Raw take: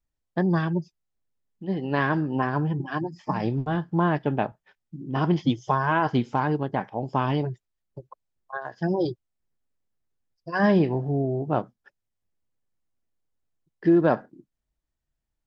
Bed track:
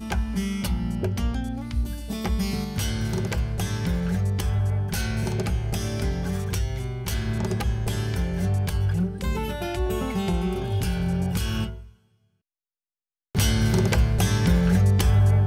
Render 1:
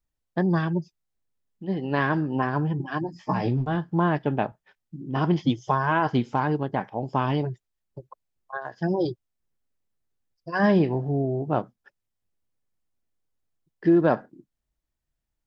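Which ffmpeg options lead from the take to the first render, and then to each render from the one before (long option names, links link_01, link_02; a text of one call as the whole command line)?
ffmpeg -i in.wav -filter_complex "[0:a]asettb=1/sr,asplit=3[link_01][link_02][link_03];[link_01]atrim=end=3.074[link_04];[link_02]atrim=start=3.07:end=3.66,asetpts=PTS-STARTPTS,afade=type=in:duration=0.004:curve=qsin,afade=type=out:start_time=0.586:duration=0.004:curve=qsin,asplit=2[link_05][link_06];[link_06]adelay=16,volume=-4.5dB[link_07];[link_05][link_07]amix=inputs=2:normalize=0,atrim=end_sample=26019[link_08];[link_03]atrim=start=3.656[link_09];[link_04][link_08]acrossfade=duration=0.004:curve1=hsin:curve2=qsin[link_10];[link_10][link_09]acrossfade=duration=0.004:curve1=qsin:curve2=hsin" out.wav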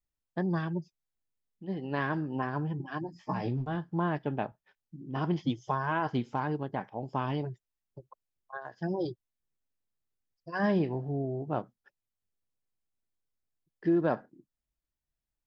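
ffmpeg -i in.wav -af "volume=-7.5dB" out.wav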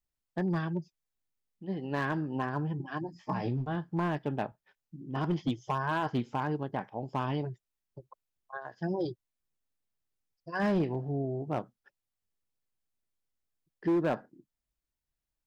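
ffmpeg -i in.wav -af "asoftclip=type=hard:threshold=-23dB" out.wav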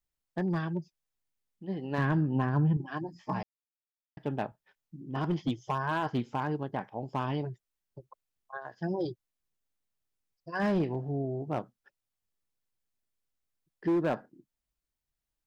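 ffmpeg -i in.wav -filter_complex "[0:a]asettb=1/sr,asplit=3[link_01][link_02][link_03];[link_01]atrim=end=1.984[link_04];[link_02]atrim=start=1.98:end=2.77,asetpts=PTS-STARTPTS,afade=type=in:duration=0.004:curve=qsin,afade=type=out:start_time=0.786:duration=0.004:curve=qsin,bass=frequency=250:gain=10,treble=frequency=4000:gain=-5[link_05];[link_03]atrim=start=2.766[link_06];[link_04][link_05]acrossfade=duration=0.004:curve1=hsin:curve2=qsin[link_07];[link_07][link_06]acrossfade=duration=0.004:curve1=qsin:curve2=hsin,asplit=3[link_08][link_09][link_10];[link_08]atrim=end=3.43,asetpts=PTS-STARTPTS,afade=type=out:start_time=3.426:duration=0.004:curve=hsin[link_11];[link_09]atrim=start=3.43:end=4.17,asetpts=PTS-STARTPTS,volume=0[link_12];[link_10]atrim=start=4.17,asetpts=PTS-STARTPTS,afade=type=in:duration=0.004:curve=hsin[link_13];[link_11][link_12][link_13]concat=n=3:v=0:a=1" out.wav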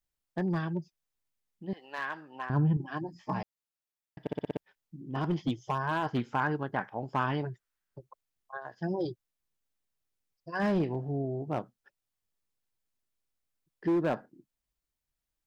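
ffmpeg -i in.wav -filter_complex "[0:a]asettb=1/sr,asplit=3[link_01][link_02][link_03];[link_01]atrim=end=1.734[link_04];[link_02]atrim=start=1.73:end=2.5,asetpts=PTS-STARTPTS,afade=type=in:duration=0.004:curve=qsin,afade=type=out:start_time=0.766:duration=0.004:curve=qsin,highpass=930[link_05];[link_03]atrim=start=2.496[link_06];[link_04][link_05]acrossfade=duration=0.004:curve1=hsin:curve2=qsin[link_07];[link_07][link_06]acrossfade=duration=0.004:curve1=qsin:curve2=hsin,asettb=1/sr,asplit=3[link_08][link_09][link_10];[link_08]atrim=end=6.164[link_11];[link_09]atrim=start=6.16:end=7.99,asetpts=PTS-STARTPTS,afade=type=in:duration=0.004:curve=qsin,afade=type=out:start_time=1.826:duration=0.004:curve=qsin,equalizer=frequency=1500:width=1.5:gain=10[link_12];[link_10]atrim=start=7.986[link_13];[link_11][link_12]acrossfade=duration=0.004:curve1=hsin:curve2=qsin[link_14];[link_14][link_13]acrossfade=duration=0.004:curve1=qsin:curve2=hsin,asplit=7[link_15][link_16][link_17][link_18][link_19][link_20][link_21];[link_15]atrim=end=4.272[link_22];[link_16]atrim=start=4.208:end=4.272[link_23];[link_17]atrim=start=4.208:end=4.272[link_24];[link_18]atrim=start=4.208:end=4.272[link_25];[link_19]atrim=start=4.208:end=4.272[link_26];[link_20]atrim=start=4.208:end=4.272[link_27];[link_21]atrim=start=4.568[link_28];[link_22][link_23]acrossfade=duration=0.004:curve1=hsin:curve2=hsin[link_29];[link_29][link_24]acrossfade=duration=0.004:curve1=hsin:curve2=hsin[link_30];[link_30][link_25]acrossfade=duration=0.004:curve1=hsin:curve2=hsin[link_31];[link_31][link_26]acrossfade=duration=0.004:curve1=hsin:curve2=hsin[link_32];[link_32][link_27]acrossfade=duration=0.004:curve1=hsin:curve2=hsin[link_33];[link_33][link_28]acrossfade=duration=0.004:curve1=hsin:curve2=hsin" out.wav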